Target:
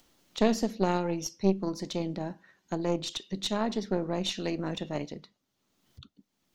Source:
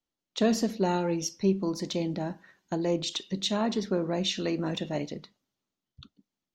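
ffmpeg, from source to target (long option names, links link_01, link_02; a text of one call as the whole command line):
ffmpeg -i in.wav -af "acompressor=mode=upward:threshold=-40dB:ratio=2.5,aeval=exprs='0.224*(cos(1*acos(clip(val(0)/0.224,-1,1)))-cos(1*PI/2))+0.0562*(cos(2*acos(clip(val(0)/0.224,-1,1)))-cos(2*PI/2))+0.0251*(cos(3*acos(clip(val(0)/0.224,-1,1)))-cos(3*PI/2))':channel_layout=same" out.wav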